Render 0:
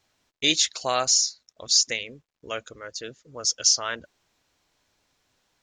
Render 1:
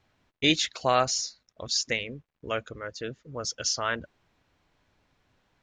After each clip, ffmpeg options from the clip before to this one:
ffmpeg -i in.wav -af "bass=frequency=250:gain=6,treble=frequency=4000:gain=-14,volume=2dB" out.wav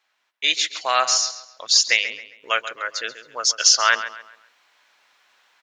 ffmpeg -i in.wav -filter_complex "[0:a]asplit=2[link_01][link_02];[link_02]adelay=135,lowpass=frequency=4200:poles=1,volume=-12dB,asplit=2[link_03][link_04];[link_04]adelay=135,lowpass=frequency=4200:poles=1,volume=0.36,asplit=2[link_05][link_06];[link_06]adelay=135,lowpass=frequency=4200:poles=1,volume=0.36,asplit=2[link_07][link_08];[link_08]adelay=135,lowpass=frequency=4200:poles=1,volume=0.36[link_09];[link_01][link_03][link_05][link_07][link_09]amix=inputs=5:normalize=0,dynaudnorm=framelen=340:gausssize=5:maxgain=11dB,highpass=1100,volume=3.5dB" out.wav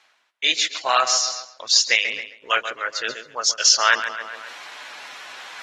ffmpeg -i in.wav -af "areverse,acompressor=mode=upward:threshold=-22dB:ratio=2.5,areverse" -ar 44100 -c:a aac -b:a 32k out.aac

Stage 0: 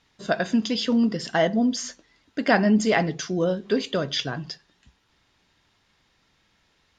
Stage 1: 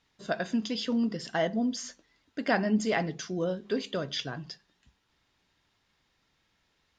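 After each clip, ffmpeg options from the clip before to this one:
ffmpeg -i in.wav -af "bandreject=frequency=101.9:width_type=h:width=4,bandreject=frequency=203.8:width_type=h:width=4,volume=-7dB" out.wav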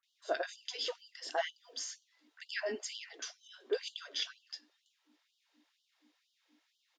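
ffmpeg -i in.wav -filter_complex "[0:a]aeval=exprs='val(0)+0.00282*(sin(2*PI*60*n/s)+sin(2*PI*2*60*n/s)/2+sin(2*PI*3*60*n/s)/3+sin(2*PI*4*60*n/s)/4+sin(2*PI*5*60*n/s)/5)':channel_layout=same,acrossover=split=1400[link_01][link_02];[link_02]adelay=30[link_03];[link_01][link_03]amix=inputs=2:normalize=0,afftfilt=real='re*gte(b*sr/1024,250*pow(2900/250,0.5+0.5*sin(2*PI*2.1*pts/sr)))':imag='im*gte(b*sr/1024,250*pow(2900/250,0.5+0.5*sin(2*PI*2.1*pts/sr)))':win_size=1024:overlap=0.75,volume=-2dB" out.wav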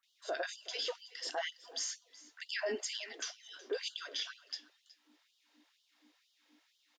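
ffmpeg -i in.wav -af "equalizer=frequency=150:width_type=o:width=0.69:gain=-13,alimiter=level_in=7.5dB:limit=-24dB:level=0:latency=1:release=53,volume=-7.5dB,aecho=1:1:370:0.106,volume=4dB" out.wav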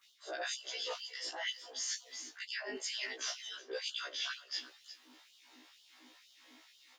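ffmpeg -i in.wav -af "areverse,acompressor=threshold=-47dB:ratio=16,areverse,afftfilt=real='re*1.73*eq(mod(b,3),0)':imag='im*1.73*eq(mod(b,3),0)':win_size=2048:overlap=0.75,volume=13.5dB" out.wav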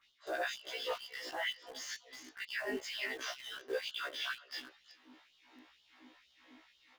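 ffmpeg -i in.wav -filter_complex "[0:a]bass=frequency=250:gain=7,treble=frequency=4000:gain=-15,asplit=2[link_01][link_02];[link_02]acrusher=bits=7:mix=0:aa=0.000001,volume=-8dB[link_03];[link_01][link_03]amix=inputs=2:normalize=0,volume=1dB" out.wav

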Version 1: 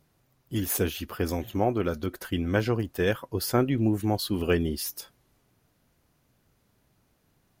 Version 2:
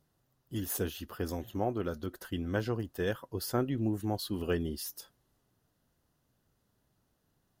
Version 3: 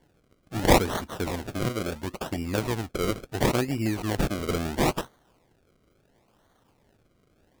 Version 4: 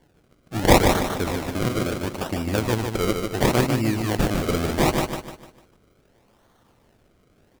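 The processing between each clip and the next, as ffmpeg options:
ffmpeg -i in.wav -af "equalizer=frequency=2300:width=7.3:gain=-11.5,volume=-7dB" out.wav
ffmpeg -i in.wav -af "crystalizer=i=3.5:c=0,acrusher=samples=34:mix=1:aa=0.000001:lfo=1:lforange=34:lforate=0.73,volume=4dB" out.wav
ffmpeg -i in.wav -af "aecho=1:1:150|300|450|600|750:0.562|0.219|0.0855|0.0334|0.013,volume=3.5dB" out.wav

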